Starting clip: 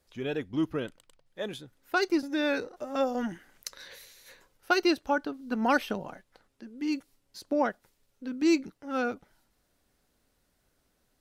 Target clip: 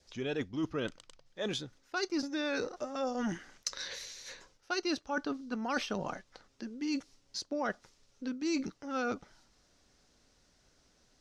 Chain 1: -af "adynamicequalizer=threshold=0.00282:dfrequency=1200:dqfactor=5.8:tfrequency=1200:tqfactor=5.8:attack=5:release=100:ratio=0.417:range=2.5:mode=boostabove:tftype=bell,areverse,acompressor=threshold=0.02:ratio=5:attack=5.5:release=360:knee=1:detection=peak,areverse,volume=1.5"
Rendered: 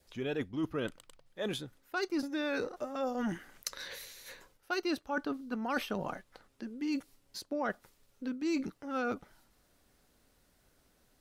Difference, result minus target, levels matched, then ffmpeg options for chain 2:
8 kHz band -4.5 dB
-af "adynamicequalizer=threshold=0.00282:dfrequency=1200:dqfactor=5.8:tfrequency=1200:tqfactor=5.8:attack=5:release=100:ratio=0.417:range=2.5:mode=boostabove:tftype=bell,lowpass=f=5900:t=q:w=2.5,areverse,acompressor=threshold=0.02:ratio=5:attack=5.5:release=360:knee=1:detection=peak,areverse,volume=1.5"

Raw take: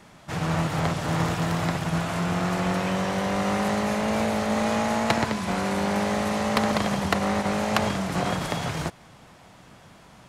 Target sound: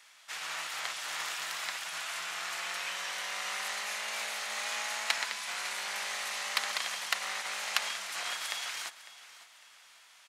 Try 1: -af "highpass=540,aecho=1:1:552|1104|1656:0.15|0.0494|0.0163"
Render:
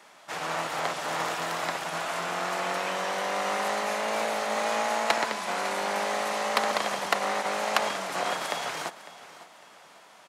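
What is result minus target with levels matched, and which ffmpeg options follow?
500 Hz band +13.5 dB
-af "highpass=2000,aecho=1:1:552|1104|1656:0.15|0.0494|0.0163"

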